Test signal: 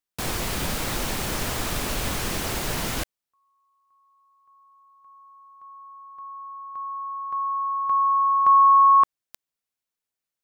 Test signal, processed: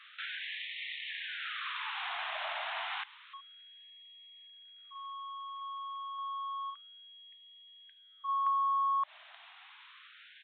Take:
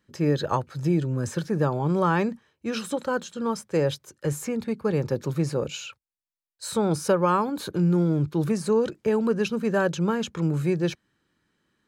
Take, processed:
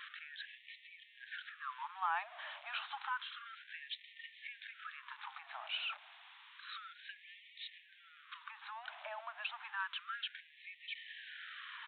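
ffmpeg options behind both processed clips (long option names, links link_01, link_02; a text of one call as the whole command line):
ffmpeg -i in.wav -af "aeval=exprs='val(0)+0.5*0.02*sgn(val(0))':channel_layout=same,highpass=110,acompressor=threshold=-28dB:ratio=4:attack=91:release=108:knee=1:detection=rms,acrusher=bits=8:mode=log:mix=0:aa=0.000001,aresample=8000,aresample=44100,afftfilt=real='re*gte(b*sr/1024,590*pow(1800/590,0.5+0.5*sin(2*PI*0.3*pts/sr)))':imag='im*gte(b*sr/1024,590*pow(1800/590,0.5+0.5*sin(2*PI*0.3*pts/sr)))':win_size=1024:overlap=0.75,volume=-5dB" out.wav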